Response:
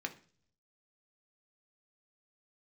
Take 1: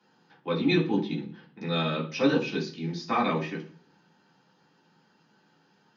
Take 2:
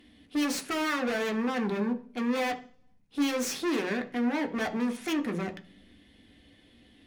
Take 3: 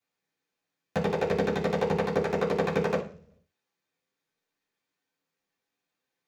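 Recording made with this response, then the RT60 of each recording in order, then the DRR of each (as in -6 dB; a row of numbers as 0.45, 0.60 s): 2; 0.45, 0.45, 0.45 s; -5.0, 4.5, -11.0 dB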